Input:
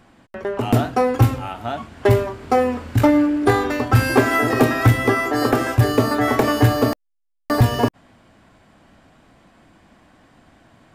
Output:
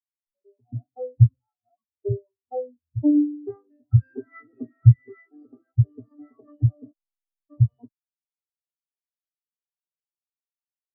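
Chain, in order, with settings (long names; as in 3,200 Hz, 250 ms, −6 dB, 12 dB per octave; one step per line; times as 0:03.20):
converter with a step at zero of −29.5 dBFS
every bin expanded away from the loudest bin 4 to 1
level +4.5 dB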